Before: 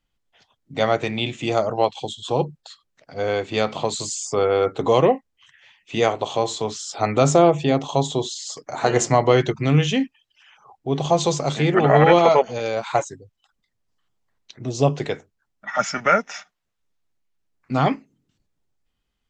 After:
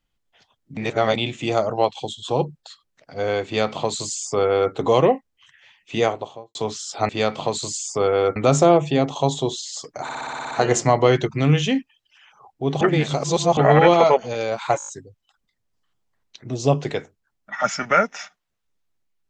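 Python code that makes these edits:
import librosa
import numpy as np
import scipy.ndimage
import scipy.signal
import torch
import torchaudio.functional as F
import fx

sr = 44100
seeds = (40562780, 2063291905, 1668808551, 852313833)

y = fx.studio_fade_out(x, sr, start_s=5.95, length_s=0.6)
y = fx.edit(y, sr, fx.reverse_span(start_s=0.77, length_s=0.39),
    fx.duplicate(start_s=3.46, length_s=1.27, to_s=7.09),
    fx.stutter(start_s=8.76, slice_s=0.06, count=9),
    fx.reverse_span(start_s=11.06, length_s=0.76),
    fx.stutter(start_s=13.03, slice_s=0.02, count=6), tone=tone)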